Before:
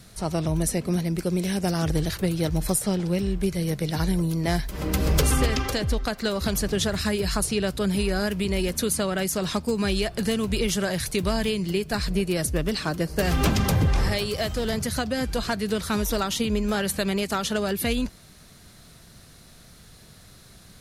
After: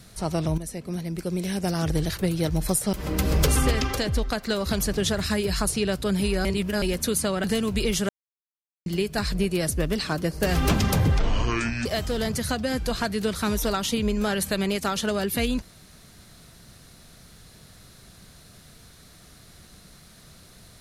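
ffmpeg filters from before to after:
-filter_complex "[0:a]asplit=10[s0][s1][s2][s3][s4][s5][s6][s7][s8][s9];[s0]atrim=end=0.58,asetpts=PTS-STARTPTS,afade=t=out:st=0.576:d=0.004:c=hsin:silence=0.251189[s10];[s1]atrim=start=0.58:end=2.932,asetpts=PTS-STARTPTS,afade=t=in:d=1.8:c=qsin:silence=0.251189[s11];[s2]atrim=start=4.678:end=8.202[s12];[s3]atrim=start=8.198:end=8.572,asetpts=PTS-STARTPTS,areverse[s13];[s4]atrim=start=8.568:end=9.192[s14];[s5]atrim=start=10.198:end=10.85,asetpts=PTS-STARTPTS,afade=t=out:st=0.648:d=0.004:c=hsin[s15];[s6]atrim=start=10.85:end=11.62,asetpts=PTS-STARTPTS,volume=0[s16];[s7]atrim=start=11.62:end=13.954,asetpts=PTS-STARTPTS,afade=t=in:d=0.004:c=hsin[s17];[s8]atrim=start=13.95:end=14.33,asetpts=PTS-STARTPTS,asetrate=25137,aresample=44100,atrim=end_sample=29400,asetpts=PTS-STARTPTS[s18];[s9]atrim=start=14.326[s19];[s10][s11]concat=n=2:v=0:a=1[s20];[s20][s12]acrossfade=d=0.004:c1=hsin:c2=hsin[s21];[s21][s13]acrossfade=d=0.004:c1=hsin:c2=hsin[s22];[s22][s14]acrossfade=d=0.004:c1=hsin:c2=hsin[s23];[s15][s16][s17]concat=n=3:v=0:a=1[s24];[s23][s24]acrossfade=d=0.004:c1=hsin:c2=hsin[s25];[s25][s18]acrossfade=d=0.004:c1=hsin:c2=hsin[s26];[s26][s19]acrossfade=d=0.004:c1=hsin:c2=hsin"

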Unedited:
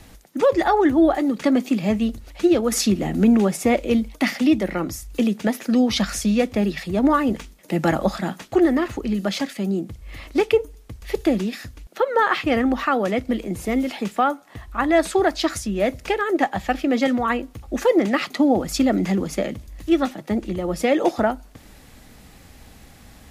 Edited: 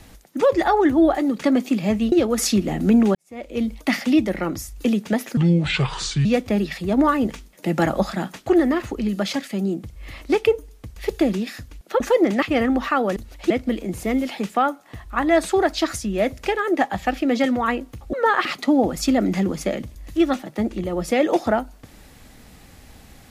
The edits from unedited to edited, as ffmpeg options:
-filter_complex "[0:a]asplit=11[s0][s1][s2][s3][s4][s5][s6][s7][s8][s9][s10];[s0]atrim=end=2.122[s11];[s1]atrim=start=2.458:end=3.49,asetpts=PTS-STARTPTS,afade=t=out:st=1.028:d=0.004:c=hsin[s12];[s2]atrim=start=3.49:end=5.714,asetpts=PTS-STARTPTS,afade=t=in:d=0.58:c=qua[s13];[s3]atrim=start=5.71:end=6.31,asetpts=PTS-STARTPTS,asetrate=29988,aresample=44100[s14];[s4]atrim=start=6.306:end=12.062[s15];[s5]atrim=start=17.748:end=18.172[s16];[s6]atrim=start=12.378:end=13.122[s17];[s7]atrim=start=2.118:end=2.462[s18];[s8]atrim=start=13.118:end=17.752[s19];[s9]atrim=start=12.058:end=12.382[s20];[s10]atrim=start=18.168[s21];[s12][s13]concat=n=2:v=0:a=1[s22];[s11][s22]acrossfade=d=0.004:c1=hsin:c2=hsin[s23];[s23][s14]acrossfade=d=0.004:c1=hsin:c2=hsin[s24];[s24][s15]acrossfade=d=0.004:c1=hsin:c2=hsin[s25];[s25][s16]acrossfade=d=0.004:c1=hsin:c2=hsin[s26];[s26][s17]acrossfade=d=0.004:c1=hsin:c2=hsin[s27];[s27][s18]acrossfade=d=0.004:c1=hsin:c2=hsin[s28];[s28][s19]acrossfade=d=0.004:c1=hsin:c2=hsin[s29];[s29][s20]acrossfade=d=0.004:c1=hsin:c2=hsin[s30];[s30][s21]acrossfade=d=0.004:c1=hsin:c2=hsin"

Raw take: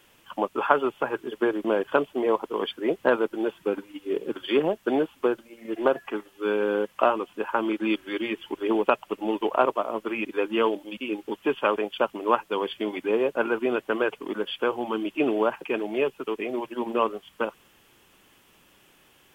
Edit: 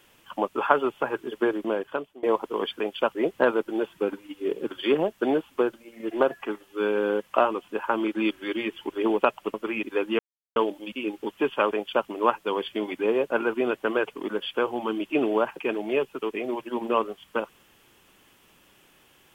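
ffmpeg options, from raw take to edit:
-filter_complex "[0:a]asplit=6[s0][s1][s2][s3][s4][s5];[s0]atrim=end=2.23,asetpts=PTS-STARTPTS,afade=t=out:st=1.5:d=0.73:silence=0.0630957[s6];[s1]atrim=start=2.23:end=2.802,asetpts=PTS-STARTPTS,afade=t=in:d=0.004:c=hsin:silence=0.0630957[s7];[s2]atrim=start=11.778:end=12.132[s8];[s3]atrim=start=2.798:end=9.192[s9];[s4]atrim=start=9.958:end=10.61,asetpts=PTS-STARTPTS,afade=t=out:st=0.648:d=0.004:c=hsin,apad=pad_dur=0.37[s10];[s5]atrim=start=10.61,asetpts=PTS-STARTPTS,afade=t=in:d=0.004:c=hsin[s11];[s6][s7]concat=n=2:v=0:a=1[s12];[s12][s8]acrossfade=d=0.004:c1=hsin:c2=hsin[s13];[s13][s9]acrossfade=d=0.004:c1=hsin:c2=hsin[s14];[s10][s11]concat=n=2:v=0:a=1[s15];[s14][s15]acrossfade=d=0.004:c1=hsin:c2=hsin"

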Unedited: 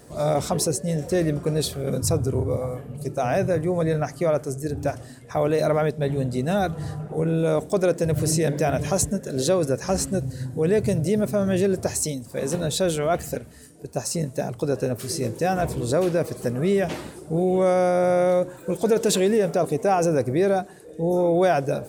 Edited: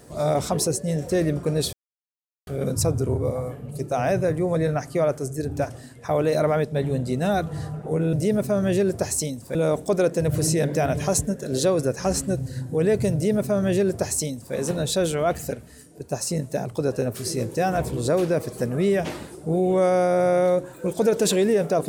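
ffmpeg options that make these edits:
-filter_complex "[0:a]asplit=4[s0][s1][s2][s3];[s0]atrim=end=1.73,asetpts=PTS-STARTPTS,afade=t=out:st=1.726:d=0.004:c=hsin,apad=pad_dur=0.74[s4];[s1]atrim=start=1.73:end=7.392,asetpts=PTS-STARTPTS,afade=t=in:d=0.004:c=hsin[s5];[s2]atrim=start=10.968:end=12.392[s6];[s3]atrim=start=7.388[s7];[s4][s5]concat=n=2:v=0:a=1[s8];[s8][s6]acrossfade=d=0.004:c1=hsin:c2=hsin[s9];[s9][s7]acrossfade=d=0.004:c1=hsin:c2=hsin"

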